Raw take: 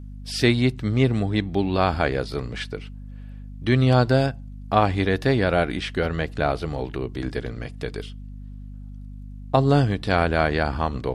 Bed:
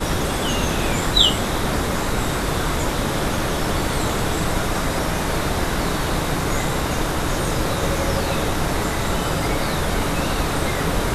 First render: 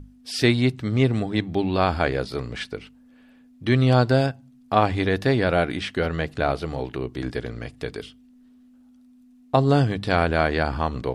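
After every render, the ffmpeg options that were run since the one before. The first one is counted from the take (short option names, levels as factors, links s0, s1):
-af "bandreject=f=50:t=h:w=6,bandreject=f=100:t=h:w=6,bandreject=f=150:t=h:w=6,bandreject=f=200:t=h:w=6"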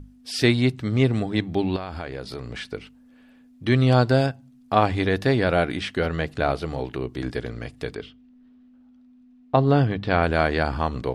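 -filter_complex "[0:a]asettb=1/sr,asplit=3[s0][s1][s2];[s0]atrim=end=1.764[s3];[s1]atrim=start=1.76:end=2.71,asetpts=PTS-STARTPTS,afade=t=in:d=0.004:c=qsin,afade=t=out:st=0.946:d=0.004:c=qsin,acompressor=threshold=0.0355:ratio=5:attack=3.2:release=140:knee=1:detection=peak[s4];[s2]atrim=start=2.706[s5];[s3][s4]acrossfade=d=0.004:c1=hsin:c2=qsin[s6];[s6][s5]acrossfade=d=0.004:c1=qsin:c2=hsin,asplit=3[s7][s8][s9];[s7]afade=t=out:st=7.94:d=0.02[s10];[s8]lowpass=3400,afade=t=in:st=7.94:d=0.02,afade=t=out:st=10.22:d=0.02[s11];[s9]afade=t=in:st=10.22:d=0.02[s12];[s10][s11][s12]amix=inputs=3:normalize=0"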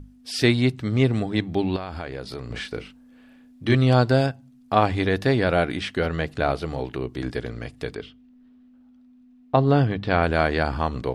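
-filter_complex "[0:a]asettb=1/sr,asplit=3[s0][s1][s2];[s0]atrim=end=2.474[s3];[s1]atrim=start=2.47:end=3.75,asetpts=PTS-STARTPTS,afade=t=in:d=0.004:c=qsin,afade=t=out:st=1.276:d=0.004:c=qsin,asplit=2[s4][s5];[s5]adelay=35,volume=0.708[s6];[s4][s6]amix=inputs=2:normalize=0,atrim=end_sample=56448[s7];[s2]atrim=start=3.746[s8];[s3][s7]acrossfade=d=0.004:c1=hsin:c2=qsin[s9];[s9][s8]acrossfade=d=0.004:c1=qsin:c2=hsin"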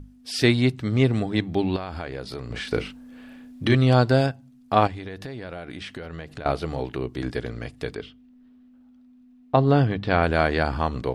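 -filter_complex "[0:a]asettb=1/sr,asplit=3[s0][s1][s2];[s0]atrim=end=2.674[s3];[s1]atrim=start=2.67:end=3.68,asetpts=PTS-STARTPTS,afade=t=in:d=0.004:c=qsin,afade=t=out:st=1.006:d=0.004:c=qsin,acontrast=83[s4];[s2]atrim=start=3.676[s5];[s3][s4]acrossfade=d=0.004:c1=hsin:c2=qsin[s6];[s6][s5]acrossfade=d=0.004:c1=qsin:c2=hsin,asettb=1/sr,asplit=3[s7][s8][s9];[s7]atrim=end=4.874[s10];[s8]atrim=start=4.87:end=6.46,asetpts=PTS-STARTPTS,afade=t=in:d=0.004:c=qsin,afade=t=out:st=1.586:d=0.004:c=qsin,acompressor=threshold=0.0251:ratio=8:attack=3.2:release=140:knee=1:detection=peak[s11];[s9]atrim=start=6.456[s12];[s10][s11]acrossfade=d=0.004:c1=hsin:c2=qsin[s13];[s13][s12]acrossfade=d=0.004:c1=qsin:c2=hsin"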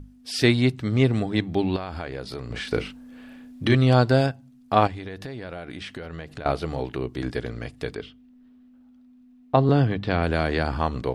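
-filter_complex "[0:a]asettb=1/sr,asplit=3[s0][s1][s2];[s0]atrim=end=9.694[s3];[s1]atrim=start=9.69:end=10.68,asetpts=PTS-STARTPTS,afade=t=in:d=0.004:c=qsin,afade=t=out:st=0.986:d=0.004:c=qsin,acrossover=split=430|3000[s4][s5][s6];[s5]acompressor=threshold=0.0794:ratio=6:attack=3.2:release=140:knee=2.83:detection=peak[s7];[s4][s7][s6]amix=inputs=3:normalize=0[s8];[s2]atrim=start=10.676[s9];[s3][s8]acrossfade=d=0.004:c1=hsin:c2=qsin[s10];[s10][s9]acrossfade=d=0.004:c1=qsin:c2=hsin"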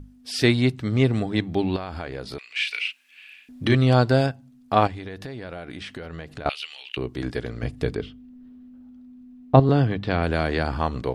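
-filter_complex "[0:a]asettb=1/sr,asplit=3[s0][s1][s2];[s0]atrim=end=2.384[s3];[s1]atrim=start=2.38:end=3.49,asetpts=PTS-STARTPTS,afade=t=in:d=0.004:c=qsin,afade=t=out:st=1.106:d=0.004:c=qsin,highpass=f=2500:t=q:w=6.1[s4];[s2]atrim=start=3.486[s5];[s3][s4]acrossfade=d=0.004:c1=hsin:c2=qsin[s6];[s6][s5]acrossfade=d=0.004:c1=qsin:c2=hsin,asettb=1/sr,asplit=3[s7][s8][s9];[s7]atrim=end=6.494[s10];[s8]atrim=start=6.49:end=6.97,asetpts=PTS-STARTPTS,afade=t=in:d=0.004:c=qsin,afade=t=out:st=0.476:d=0.004:c=qsin,highpass=f=2800:t=q:w=7.8[s11];[s9]atrim=start=6.966[s12];[s10][s11]acrossfade=d=0.004:c1=hsin:c2=qsin[s13];[s13][s12]acrossfade=d=0.004:c1=qsin:c2=hsin,asettb=1/sr,asplit=3[s14][s15][s16];[s14]atrim=end=7.624[s17];[s15]atrim=start=7.62:end=9.6,asetpts=PTS-STARTPTS,afade=t=in:d=0.004:c=qsin,afade=t=out:st=1.976:d=0.004:c=qsin,lowshelf=f=430:g=9.5[s18];[s16]atrim=start=9.596[s19];[s17][s18]acrossfade=d=0.004:c1=hsin:c2=qsin[s20];[s20][s19]acrossfade=d=0.004:c1=qsin:c2=hsin"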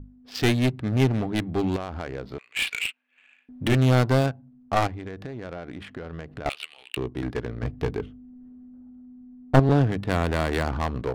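-af "adynamicsmooth=sensitivity=4:basefreq=1000,aeval=exprs='clip(val(0),-1,0.0944)':c=same"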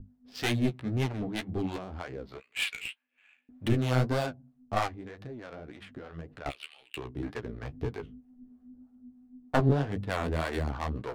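-filter_complex "[0:a]flanger=delay=8.3:depth=8.2:regen=20:speed=1.9:shape=triangular,acrossover=split=540[s0][s1];[s0]aeval=exprs='val(0)*(1-0.7/2+0.7/2*cos(2*PI*3.2*n/s))':c=same[s2];[s1]aeval=exprs='val(0)*(1-0.7/2-0.7/2*cos(2*PI*3.2*n/s))':c=same[s3];[s2][s3]amix=inputs=2:normalize=0"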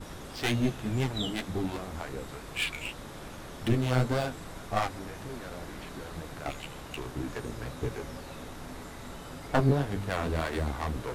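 -filter_complex "[1:a]volume=0.0841[s0];[0:a][s0]amix=inputs=2:normalize=0"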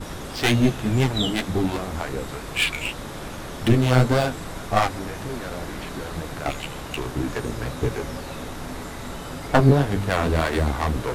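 -af "volume=2.82,alimiter=limit=0.708:level=0:latency=1"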